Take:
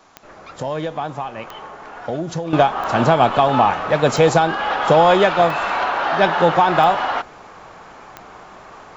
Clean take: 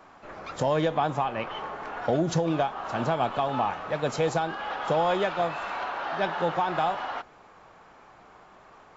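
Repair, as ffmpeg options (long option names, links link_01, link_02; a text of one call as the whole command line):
ffmpeg -i in.wav -af "adeclick=threshold=4,agate=range=-21dB:threshold=-33dB,asetnsamples=nb_out_samples=441:pad=0,asendcmd='2.53 volume volume -12dB',volume=0dB" out.wav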